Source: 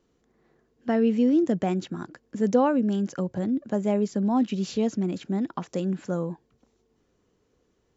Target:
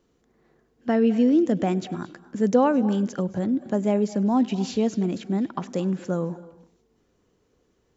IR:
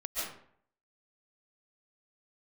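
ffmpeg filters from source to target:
-filter_complex "[0:a]asplit=2[a][b];[1:a]atrim=start_sample=2205,asetrate=52920,aresample=44100,adelay=100[c];[b][c]afir=irnorm=-1:irlink=0,volume=-18.5dB[d];[a][d]amix=inputs=2:normalize=0,volume=2dB"

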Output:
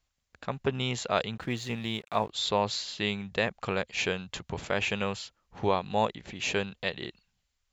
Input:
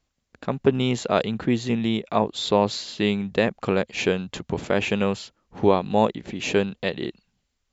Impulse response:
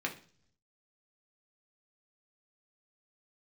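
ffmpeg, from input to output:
-filter_complex "[0:a]equalizer=f=280:t=o:w=2.1:g=-10.5,asettb=1/sr,asplit=3[a][b][c];[a]atrim=end=1.354[d];[b]atrim=start=1.35:end=2.3,asetpts=PTS-STARTPTS,afade=t=in:d=0.004:c=qsin,afade=t=out:st=0.946:d=0.004:c=qsin,aeval=exprs='sgn(val(0))*max(abs(val(0))-0.00335,0)':c=same[e];[c]atrim=start=2.296[f];[d][e]acrossfade=d=0.004:c1=hsin:c2=qsin[g];[g][f]acrossfade=d=0.004:c1=qsin:c2=hsin,volume=-2dB"

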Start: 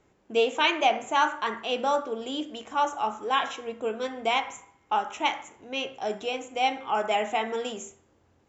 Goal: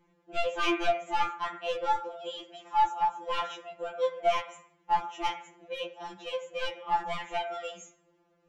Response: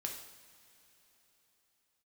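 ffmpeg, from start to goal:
-af "aeval=exprs='clip(val(0),-1,0.0668)':c=same,aemphasis=mode=reproduction:type=50kf,afftfilt=real='re*2.83*eq(mod(b,8),0)':imag='im*2.83*eq(mod(b,8),0)':win_size=2048:overlap=0.75"

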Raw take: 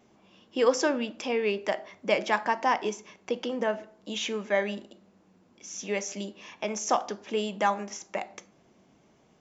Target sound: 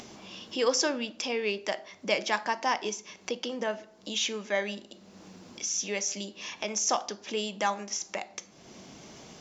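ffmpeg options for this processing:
-af "acompressor=mode=upward:threshold=-31dB:ratio=2.5,equalizer=f=5.1k:t=o:w=1.6:g=11,volume=-4dB"

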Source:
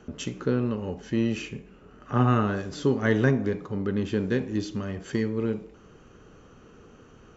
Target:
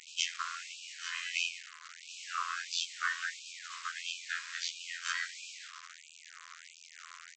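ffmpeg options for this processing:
-filter_complex "[0:a]bass=f=250:g=-13,treble=f=4k:g=-2,bandreject=f=74.51:t=h:w=4,bandreject=f=149.02:t=h:w=4,bandreject=f=223.53:t=h:w=4,bandreject=f=298.04:t=h:w=4,bandreject=f=372.55:t=h:w=4,bandreject=f=447.06:t=h:w=4,bandreject=f=521.57:t=h:w=4,bandreject=f=596.08:t=h:w=4,bandreject=f=670.59:t=h:w=4,bandreject=f=745.1:t=h:w=4,bandreject=f=819.61:t=h:w=4,bandreject=f=894.12:t=h:w=4,bandreject=f=968.63:t=h:w=4,bandreject=f=1.04314k:t=h:w=4,bandreject=f=1.11765k:t=h:w=4,bandreject=f=1.19216k:t=h:w=4,bandreject=f=1.26667k:t=h:w=4,bandreject=f=1.34118k:t=h:w=4,bandreject=f=1.41569k:t=h:w=4,bandreject=f=1.4902k:t=h:w=4,bandreject=f=1.56471k:t=h:w=4,bandreject=f=1.63922k:t=h:w=4,acrossover=split=280[a][b];[b]acompressor=threshold=-33dB:ratio=10[c];[a][c]amix=inputs=2:normalize=0,asplit=2[d][e];[e]alimiter=level_in=4.5dB:limit=-24dB:level=0:latency=1:release=221,volume=-4.5dB,volume=0.5dB[f];[d][f]amix=inputs=2:normalize=0,acontrast=20,afftfilt=real='hypot(re,im)*cos(PI*b)':imag='0':win_size=2048:overlap=0.75,asplit=4[g][h][i][j];[h]asetrate=22050,aresample=44100,atempo=2,volume=-13dB[k];[i]asetrate=35002,aresample=44100,atempo=1.25992,volume=-17dB[l];[j]asetrate=37084,aresample=44100,atempo=1.18921,volume=-6dB[m];[g][k][l][m]amix=inputs=4:normalize=0,aresample=16000,acrusher=bits=6:mix=0:aa=0.000001,aresample=44100,asplit=2[n][o];[o]adelay=233.2,volume=-25dB,highshelf=f=4k:g=-5.25[p];[n][p]amix=inputs=2:normalize=0,afftfilt=real='re*gte(b*sr/1024,950*pow(2400/950,0.5+0.5*sin(2*PI*1.5*pts/sr)))':imag='im*gte(b*sr/1024,950*pow(2400/950,0.5+0.5*sin(2*PI*1.5*pts/sr)))':win_size=1024:overlap=0.75"

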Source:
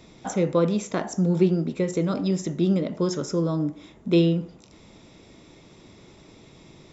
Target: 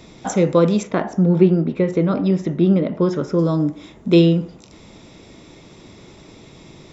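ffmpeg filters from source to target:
-filter_complex "[0:a]asettb=1/sr,asplit=3[a][b][c];[a]atrim=end=0.834[d];[b]atrim=start=0.83:end=3.39,asetpts=PTS-STARTPTS,afade=t=in:d=0.004:c=qsin,afade=t=out:st=2.556:d=0.004:c=qsin,lowpass=2.7k[e];[c]atrim=start=3.386[f];[d][e]acrossfade=d=0.004:c1=hsin:c2=qsin[g];[g][f]acrossfade=d=0.004:c1=qsin:c2=hsin,volume=6.5dB"

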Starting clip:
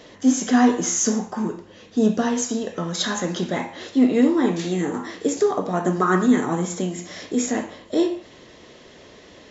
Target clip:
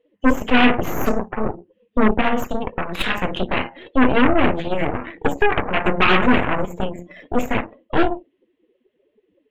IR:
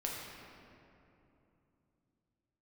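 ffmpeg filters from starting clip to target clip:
-af "afftdn=nr=32:nf=-33,aeval=exprs='0.501*(cos(1*acos(clip(val(0)/0.501,-1,1)))-cos(1*PI/2))+0.178*(cos(8*acos(clip(val(0)/0.501,-1,1)))-cos(8*PI/2))':c=same,highshelf=f=4k:t=q:w=3:g=-13,volume=-1.5dB"

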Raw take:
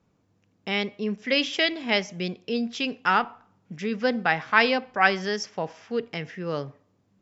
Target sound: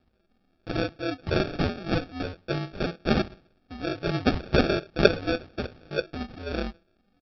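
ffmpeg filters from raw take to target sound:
-af "aecho=1:1:7.1:0.52,aeval=exprs='val(0)*sin(2*PI*88*n/s)':c=same,aphaser=in_gain=1:out_gain=1:delay=4.7:decay=0.51:speed=1.2:type=triangular,aresample=11025,acrusher=samples=11:mix=1:aa=0.000001,aresample=44100"

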